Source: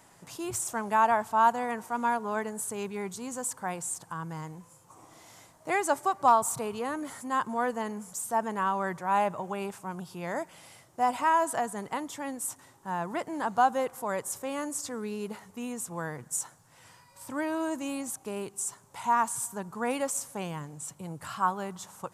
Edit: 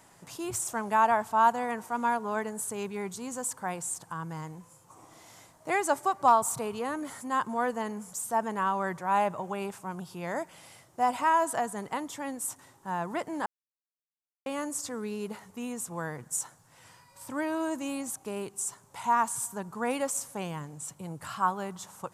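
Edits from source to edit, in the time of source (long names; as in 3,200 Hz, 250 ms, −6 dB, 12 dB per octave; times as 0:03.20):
0:13.46–0:14.46: silence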